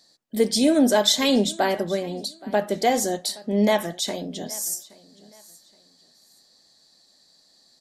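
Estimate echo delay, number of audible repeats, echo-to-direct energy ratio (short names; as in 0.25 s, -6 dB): 0.822 s, 2, -21.5 dB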